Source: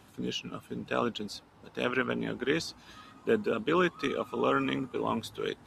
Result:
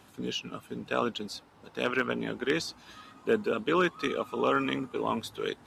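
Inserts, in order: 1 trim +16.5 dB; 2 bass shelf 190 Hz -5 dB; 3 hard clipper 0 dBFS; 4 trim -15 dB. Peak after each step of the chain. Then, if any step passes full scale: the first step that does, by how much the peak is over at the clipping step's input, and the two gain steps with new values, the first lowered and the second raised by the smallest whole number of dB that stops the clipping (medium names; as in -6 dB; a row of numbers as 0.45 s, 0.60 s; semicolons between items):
+3.5 dBFS, +3.0 dBFS, 0.0 dBFS, -15.0 dBFS; step 1, 3.0 dB; step 1 +13.5 dB, step 4 -12 dB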